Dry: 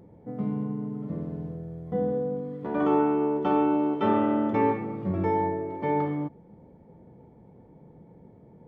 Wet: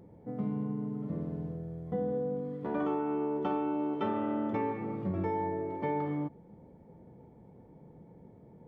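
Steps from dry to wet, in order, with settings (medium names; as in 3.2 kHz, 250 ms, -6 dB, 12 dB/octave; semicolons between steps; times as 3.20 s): compression 6:1, threshold -26 dBFS, peak gain reduction 8 dB; trim -2.5 dB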